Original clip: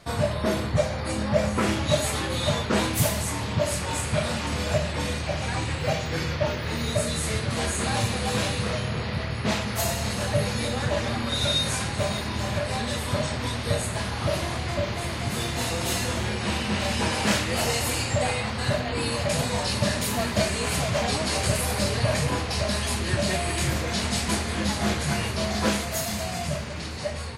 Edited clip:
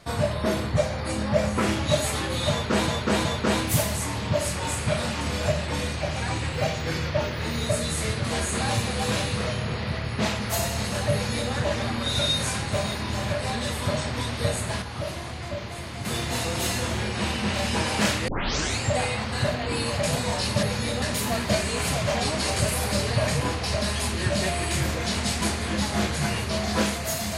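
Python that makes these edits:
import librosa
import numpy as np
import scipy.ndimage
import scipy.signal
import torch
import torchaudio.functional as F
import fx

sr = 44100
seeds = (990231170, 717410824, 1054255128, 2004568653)

y = fx.edit(x, sr, fx.repeat(start_s=2.51, length_s=0.37, count=3),
    fx.duplicate(start_s=10.39, length_s=0.39, to_s=19.89),
    fx.clip_gain(start_s=14.08, length_s=1.23, db=-5.5),
    fx.tape_start(start_s=17.54, length_s=0.52), tone=tone)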